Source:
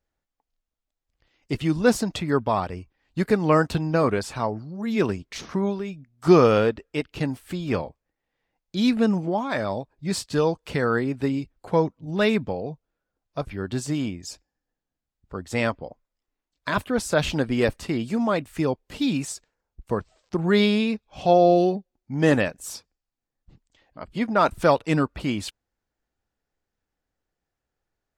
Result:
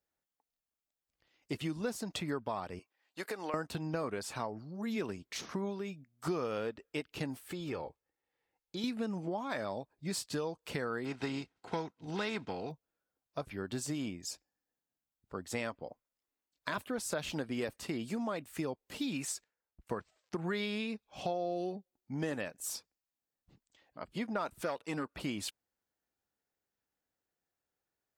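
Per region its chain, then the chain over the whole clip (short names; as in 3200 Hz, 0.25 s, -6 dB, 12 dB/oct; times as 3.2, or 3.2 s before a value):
2.79–3.54 HPF 510 Hz + compressor, threshold -26 dBFS
7.48–8.84 high shelf 6200 Hz -5 dB + comb 2.3 ms, depth 41% + compressor 4:1, threshold -27 dBFS
11.04–12.7 spectral contrast lowered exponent 0.61 + air absorption 130 m + notch comb 580 Hz
19.12–20.87 gate -58 dBFS, range -8 dB + bell 1900 Hz +5 dB 1.4 oct
24.61–25.16 HPF 190 Hz 6 dB/oct + core saturation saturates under 800 Hz
whole clip: HPF 180 Hz 6 dB/oct; high shelf 9600 Hz +8.5 dB; compressor 6:1, threshold -27 dBFS; gain -6 dB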